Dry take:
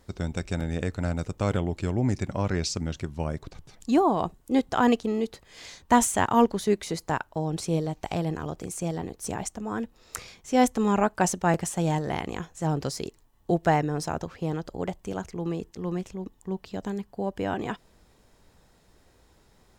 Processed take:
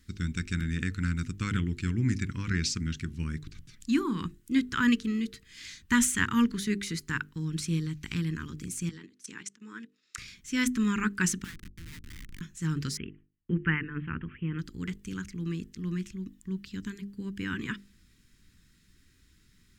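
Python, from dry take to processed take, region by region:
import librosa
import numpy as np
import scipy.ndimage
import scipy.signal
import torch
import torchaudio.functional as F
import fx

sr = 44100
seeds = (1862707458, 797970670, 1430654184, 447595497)

y = fx.chain(x, sr, fx.level_steps(step_db=17),
    fx.bandpass_edges(low_hz=350.0, high_hz=6900.0), at=(8.89, 10.18))
y = fx.chain(y, sr, fx.highpass(hz=1400.0, slope=12),
    fx.air_absorb(metres=210.0),
    fx.schmitt(flips_db=-40.0), at=(11.44, 12.41))
y = fx.chain(y, sr, fx.steep_lowpass(hz=3100.0, slope=96),
    fx.gate_hold(open_db=-48.0, close_db=-55.0, hold_ms=71.0, range_db=-21, attack_ms=1.4, release_ms=100.0), at=(12.97, 14.59))
y = scipy.signal.sosfilt(scipy.signal.cheby1(2, 1.0, [250.0, 1800.0], 'bandstop', fs=sr, output='sos'), y)
y = fx.hum_notches(y, sr, base_hz=50, count=9)
y = fx.dynamic_eq(y, sr, hz=1400.0, q=0.98, threshold_db=-49.0, ratio=4.0, max_db=6)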